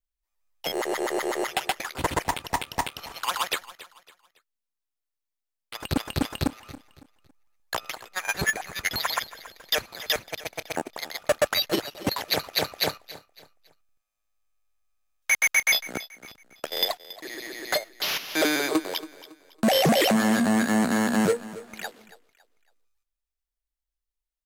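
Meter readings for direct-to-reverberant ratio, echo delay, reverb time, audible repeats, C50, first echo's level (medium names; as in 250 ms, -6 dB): no reverb, 278 ms, no reverb, 2, no reverb, -17.0 dB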